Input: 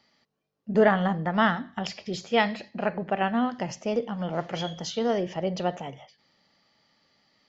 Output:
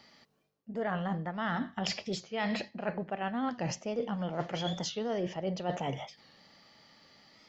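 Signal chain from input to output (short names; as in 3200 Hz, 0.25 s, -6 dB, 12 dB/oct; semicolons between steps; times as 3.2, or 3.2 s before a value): reverse; compressor 16:1, threshold -37 dBFS, peak gain reduction 22.5 dB; reverse; record warp 45 rpm, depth 100 cents; gain +7 dB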